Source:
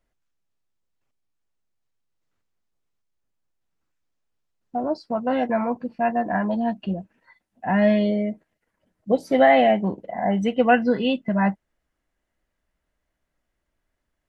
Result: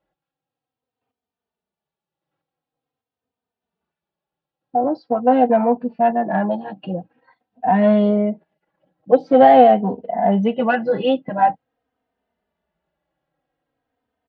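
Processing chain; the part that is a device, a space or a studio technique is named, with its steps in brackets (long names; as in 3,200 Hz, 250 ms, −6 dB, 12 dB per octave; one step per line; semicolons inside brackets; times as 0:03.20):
barber-pole flanger into a guitar amplifier (barber-pole flanger 3.1 ms −0.46 Hz; soft clipping −14 dBFS, distortion −17 dB; loudspeaker in its box 92–3,900 Hz, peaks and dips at 100 Hz −4 dB, 160 Hz +5 dB, 260 Hz +4 dB, 480 Hz +8 dB, 780 Hz +10 dB, 2,100 Hz −5 dB)
level +4 dB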